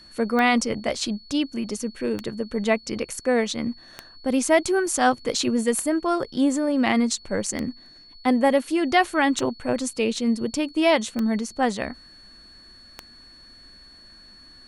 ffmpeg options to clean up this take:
-af "adeclick=t=4,bandreject=f=4400:w=30"

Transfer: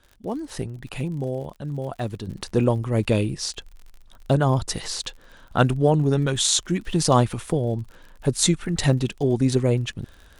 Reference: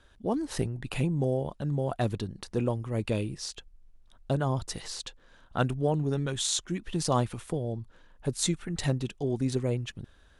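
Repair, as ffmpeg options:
-af "adeclick=t=4,asetnsamples=n=441:p=0,asendcmd='2.27 volume volume -8.5dB',volume=1"

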